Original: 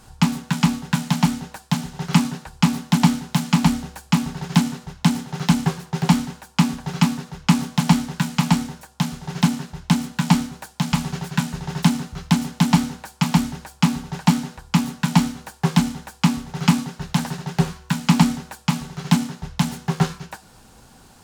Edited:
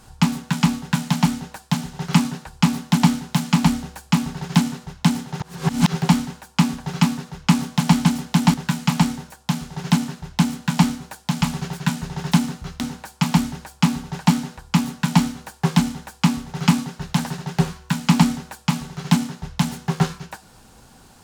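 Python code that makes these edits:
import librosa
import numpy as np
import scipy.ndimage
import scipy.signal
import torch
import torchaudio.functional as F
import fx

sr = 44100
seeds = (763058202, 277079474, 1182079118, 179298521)

y = fx.edit(x, sr, fx.reverse_span(start_s=5.41, length_s=0.53),
    fx.move(start_s=12.31, length_s=0.49, to_s=8.05), tone=tone)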